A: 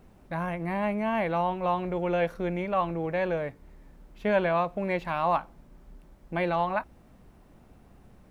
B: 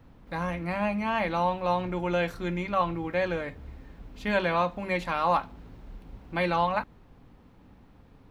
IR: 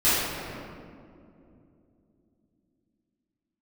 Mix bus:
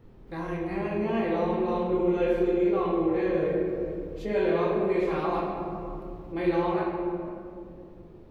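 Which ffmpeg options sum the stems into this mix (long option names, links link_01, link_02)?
-filter_complex "[0:a]lowpass=frequency=420:width_type=q:width=3.9,volume=-9.5dB,asplit=3[link_01][link_02][link_03];[link_02]volume=-12dB[link_04];[1:a]flanger=delay=22.5:depth=6.8:speed=0.74,volume=-1dB,asplit=2[link_05][link_06];[link_06]volume=-21dB[link_07];[link_03]apad=whole_len=366325[link_08];[link_05][link_08]sidechaincompress=threshold=-41dB:ratio=8:attack=12:release=358[link_09];[2:a]atrim=start_sample=2205[link_10];[link_04][link_07]amix=inputs=2:normalize=0[link_11];[link_11][link_10]afir=irnorm=-1:irlink=0[link_12];[link_01][link_09][link_12]amix=inputs=3:normalize=0"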